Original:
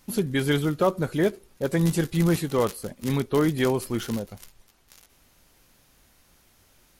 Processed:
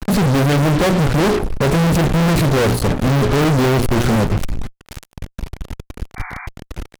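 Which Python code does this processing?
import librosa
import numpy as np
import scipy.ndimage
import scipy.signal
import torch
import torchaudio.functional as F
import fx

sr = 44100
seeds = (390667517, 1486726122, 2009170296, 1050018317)

y = fx.riaa(x, sr, side='playback')
y = fx.hum_notches(y, sr, base_hz=60, count=7)
y = fx.fuzz(y, sr, gain_db=45.0, gate_db=-42.0)
y = fx.spec_paint(y, sr, seeds[0], shape='noise', start_s=6.16, length_s=0.31, low_hz=700.0, high_hz=2400.0, level_db=-32.0)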